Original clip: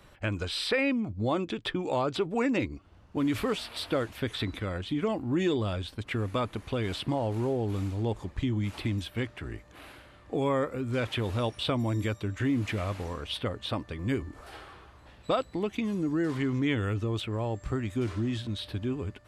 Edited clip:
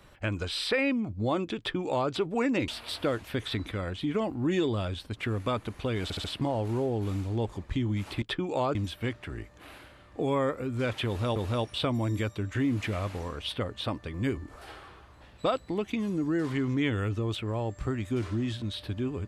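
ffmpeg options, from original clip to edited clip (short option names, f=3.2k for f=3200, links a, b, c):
-filter_complex "[0:a]asplit=8[a][b][c][d][e][f][g][h];[a]atrim=end=2.682[i];[b]atrim=start=3.558:end=6.982[j];[c]atrim=start=6.908:end=6.982[k];[d]atrim=start=6.908:end=6.982[l];[e]atrim=start=6.908:end=8.892[m];[f]atrim=start=1.578:end=2.112[n];[g]atrim=start=8.888:end=11.502[o];[h]atrim=start=11.208[p];[i][j]acrossfade=d=0.004:c1=hsin:c2=hsin[q];[q][k]acrossfade=d=0.004:c1=hsin:c2=hsin[r];[r][l]acrossfade=d=0.004:c1=hsin:c2=hsin[s];[s][m]acrossfade=d=0.004:c1=hsin:c2=hsin[t];[t][n]acrossfade=d=0.004:c1=hsin:c2=hsin[u];[u][o]acrossfade=d=0.004:c1=hsin:c2=hsin[v];[v][p]acrossfade=d=0.004:c1=hsin:c2=hsin"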